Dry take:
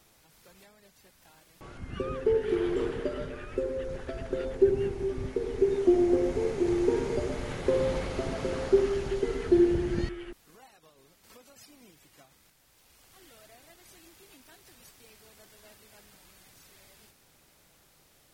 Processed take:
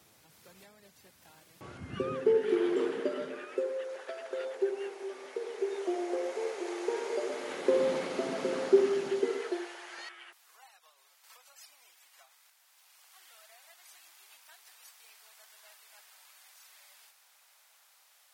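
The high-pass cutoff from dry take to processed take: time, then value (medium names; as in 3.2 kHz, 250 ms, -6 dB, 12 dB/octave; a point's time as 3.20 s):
high-pass 24 dB/octave
1.75 s 78 Hz
2.57 s 230 Hz
3.31 s 230 Hz
3.78 s 490 Hz
6.98 s 490 Hz
7.89 s 210 Hz
9.17 s 210 Hz
9.70 s 760 Hz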